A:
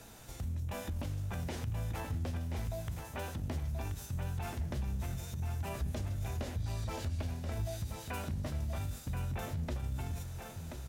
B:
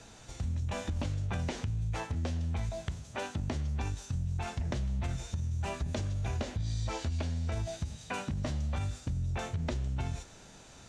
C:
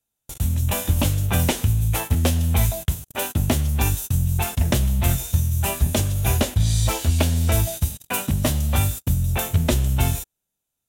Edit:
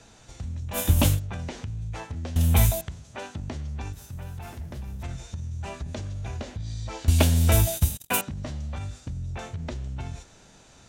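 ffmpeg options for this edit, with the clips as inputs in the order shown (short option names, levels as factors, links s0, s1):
-filter_complex "[2:a]asplit=3[s0][s1][s2];[1:a]asplit=5[s3][s4][s5][s6][s7];[s3]atrim=end=0.79[s8];[s0]atrim=start=0.73:end=1.2[s9];[s4]atrim=start=1.14:end=2.362[s10];[s1]atrim=start=2.358:end=2.812[s11];[s5]atrim=start=2.808:end=3.932[s12];[0:a]atrim=start=3.928:end=5.032[s13];[s6]atrim=start=5.028:end=7.082[s14];[s2]atrim=start=7.078:end=8.212[s15];[s7]atrim=start=8.208[s16];[s8][s9]acrossfade=d=0.06:c1=tri:c2=tri[s17];[s17][s10]acrossfade=d=0.06:c1=tri:c2=tri[s18];[s18][s11]acrossfade=d=0.004:c1=hsin:c2=hsin[s19];[s19][s12]acrossfade=d=0.004:c1=hsin:c2=hsin[s20];[s20][s13]acrossfade=d=0.004:c1=hsin:c2=hsin[s21];[s21][s14]acrossfade=d=0.004:c1=hsin:c2=hsin[s22];[s22][s15]acrossfade=d=0.004:c1=hsin:c2=hsin[s23];[s23][s16]acrossfade=d=0.004:c1=hsin:c2=hsin"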